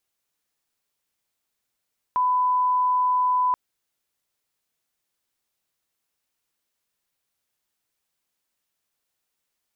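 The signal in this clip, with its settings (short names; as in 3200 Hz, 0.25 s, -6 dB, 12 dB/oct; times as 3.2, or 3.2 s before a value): line-up tone -18 dBFS 1.38 s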